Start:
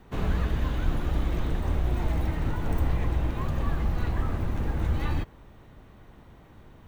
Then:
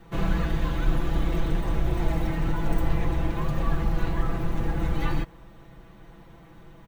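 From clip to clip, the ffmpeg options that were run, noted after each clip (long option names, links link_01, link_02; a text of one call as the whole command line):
ffmpeg -i in.wav -af "aecho=1:1:6:0.94" out.wav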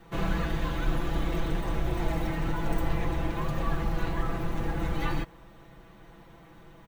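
ffmpeg -i in.wav -af "lowshelf=frequency=250:gain=-5" out.wav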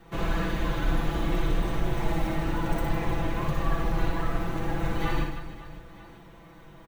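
ffmpeg -i in.wav -af "aecho=1:1:60|156|309.6|555.4|948.6:0.631|0.398|0.251|0.158|0.1" out.wav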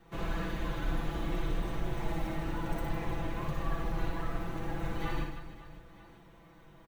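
ffmpeg -i in.wav -af "volume=-7dB" -ar 48000 -c:a aac -b:a 192k out.aac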